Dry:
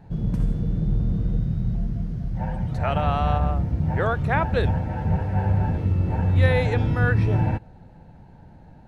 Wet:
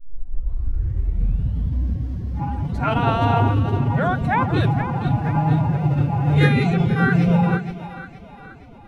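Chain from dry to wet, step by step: tape start at the beginning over 1.90 s; split-band echo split 390 Hz, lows 0.154 s, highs 0.471 s, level -10 dB; formant-preserving pitch shift +8 st; gain +2.5 dB

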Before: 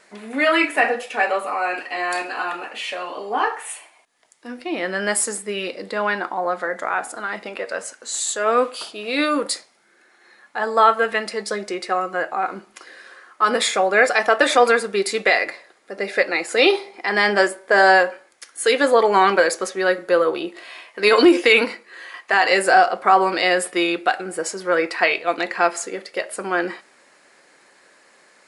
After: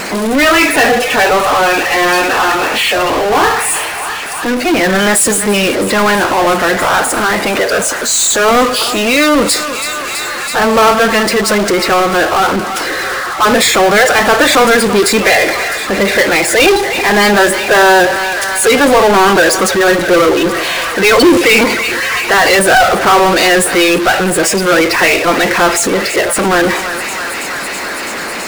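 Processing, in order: bin magnitudes rounded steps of 30 dB; low shelf 500 Hz +5.5 dB; on a send: thinning echo 0.328 s, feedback 81%, high-pass 790 Hz, level -22.5 dB; on the sum: power-law curve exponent 0.35; gain -1 dB

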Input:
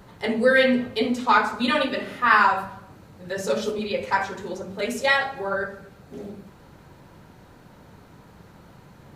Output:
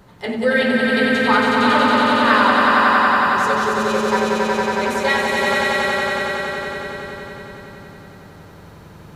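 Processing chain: swelling echo 92 ms, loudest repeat 5, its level -3 dB

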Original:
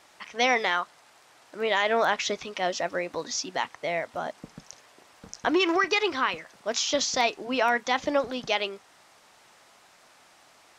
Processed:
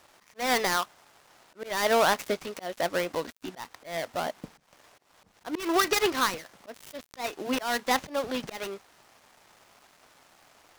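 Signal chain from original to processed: switching dead time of 0.15 ms; auto swell 0.23 s; gain +2 dB

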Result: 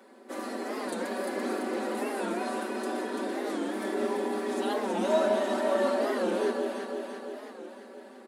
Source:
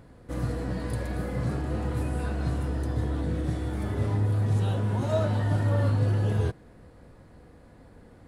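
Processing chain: steep high-pass 230 Hz 96 dB/oct; comb 5.2 ms, depth 100%; on a send: echo with dull and thin repeats by turns 0.169 s, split 870 Hz, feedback 78%, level -2 dB; on the sum: record warp 45 rpm, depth 160 cents

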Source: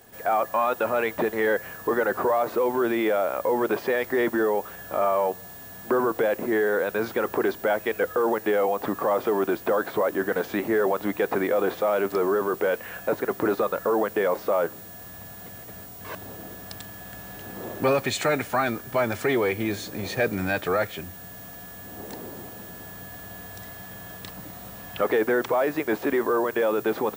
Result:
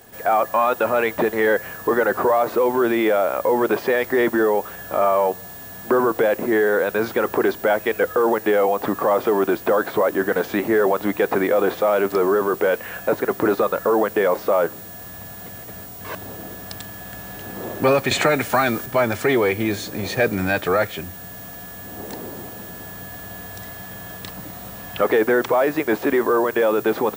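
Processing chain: 18.11–18.86 three-band squash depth 70%; gain +5 dB

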